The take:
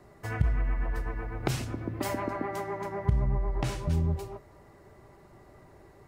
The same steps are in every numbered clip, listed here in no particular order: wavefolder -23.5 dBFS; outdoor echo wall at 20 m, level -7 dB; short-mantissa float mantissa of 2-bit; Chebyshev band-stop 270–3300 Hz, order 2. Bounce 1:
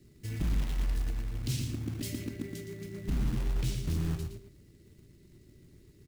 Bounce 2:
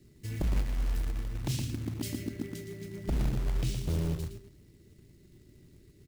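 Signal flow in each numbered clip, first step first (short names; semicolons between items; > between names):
wavefolder > Chebyshev band-stop > short-mantissa float > outdoor echo; Chebyshev band-stop > wavefolder > outdoor echo > short-mantissa float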